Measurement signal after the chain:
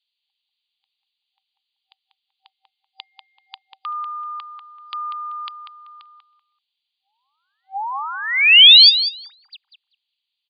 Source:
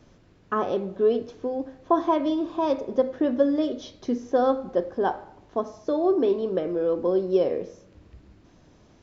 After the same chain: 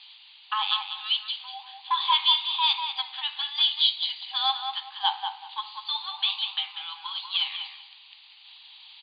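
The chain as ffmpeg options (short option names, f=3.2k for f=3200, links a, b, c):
-filter_complex "[0:a]highshelf=f=2.2k:t=q:w=3:g=13,acontrast=74,asplit=2[a][b];[b]adelay=192,lowpass=f=2.4k:p=1,volume=-5dB,asplit=2[c][d];[d]adelay=192,lowpass=f=2.4k:p=1,volume=0.25,asplit=2[e][f];[f]adelay=192,lowpass=f=2.4k:p=1,volume=0.25[g];[c][e][g]amix=inputs=3:normalize=0[h];[a][h]amix=inputs=2:normalize=0,afftfilt=real='re*between(b*sr/4096,770,4800)':imag='im*between(b*sr/4096,770,4800)':win_size=4096:overlap=0.75,volume=-2.5dB"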